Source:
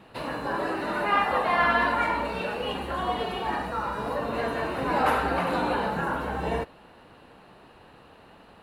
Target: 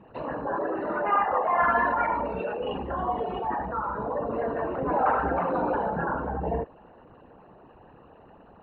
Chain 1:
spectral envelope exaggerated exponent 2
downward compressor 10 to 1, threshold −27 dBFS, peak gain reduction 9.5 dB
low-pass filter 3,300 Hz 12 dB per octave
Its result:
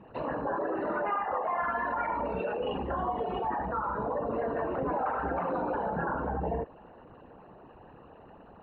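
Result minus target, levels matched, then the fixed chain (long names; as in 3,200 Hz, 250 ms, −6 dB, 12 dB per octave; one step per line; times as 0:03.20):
downward compressor: peak gain reduction +9.5 dB
spectral envelope exaggerated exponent 2
low-pass filter 3,300 Hz 12 dB per octave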